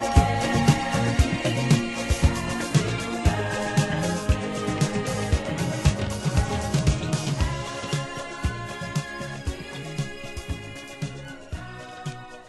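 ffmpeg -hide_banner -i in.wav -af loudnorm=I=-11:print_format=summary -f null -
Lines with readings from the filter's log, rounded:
Input Integrated:    -26.4 LUFS
Input True Peak:      -2.5 dBTP
Input LRA:            10.9 LU
Input Threshold:     -36.8 LUFS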